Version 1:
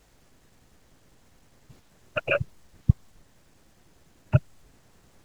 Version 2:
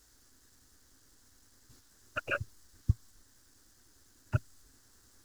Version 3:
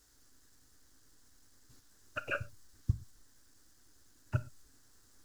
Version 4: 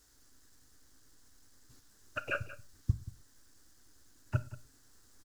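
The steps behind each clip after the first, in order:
FFT filter 110 Hz 0 dB, 160 Hz -13 dB, 260 Hz +2 dB, 650 Hz -8 dB, 1.6 kHz +5 dB, 2.4 kHz -6 dB, 5 kHz +10 dB; trim -6.5 dB
reverberation, pre-delay 7 ms, DRR 13 dB; trim -3 dB
delay 181 ms -16 dB; trim +1 dB

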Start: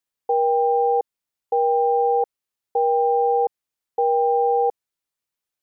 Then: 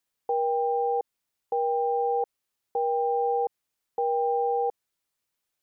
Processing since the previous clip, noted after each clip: peak limiter -23 dBFS, peak gain reduction 10.5 dB; trim +3.5 dB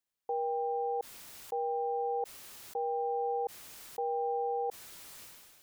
decay stretcher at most 31 dB/s; trim -7.5 dB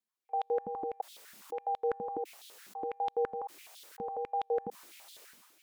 wow and flutter 16 cents; step-sequenced high-pass 12 Hz 210–3500 Hz; trim -5.5 dB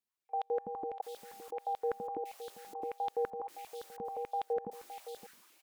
delay 565 ms -12 dB; trim -2.5 dB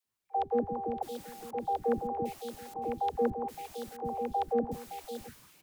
octave divider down 1 oct, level +4 dB; phase dispersion lows, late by 62 ms, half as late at 360 Hz; trim +4.5 dB

